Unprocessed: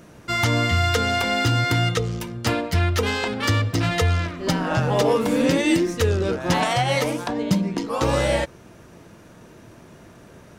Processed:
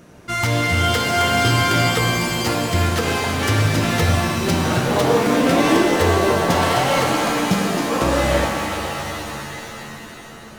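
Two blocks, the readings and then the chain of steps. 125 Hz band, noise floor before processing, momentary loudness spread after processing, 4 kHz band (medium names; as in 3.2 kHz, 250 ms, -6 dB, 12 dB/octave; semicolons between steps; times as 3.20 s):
+2.0 dB, -47 dBFS, 12 LU, +4.5 dB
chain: self-modulated delay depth 0.11 ms; pitch-shifted reverb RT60 3.4 s, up +7 st, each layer -2 dB, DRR 2 dB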